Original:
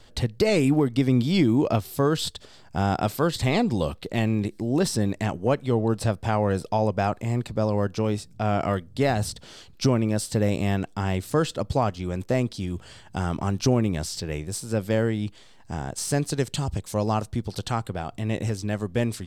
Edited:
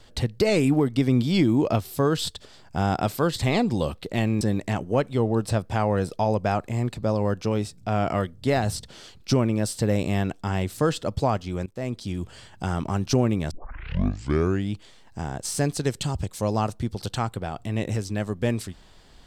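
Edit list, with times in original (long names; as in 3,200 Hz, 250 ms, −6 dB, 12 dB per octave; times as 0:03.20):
0:04.41–0:04.94: remove
0:12.19–0:12.63: fade in, from −22.5 dB
0:14.04: tape start 1.21 s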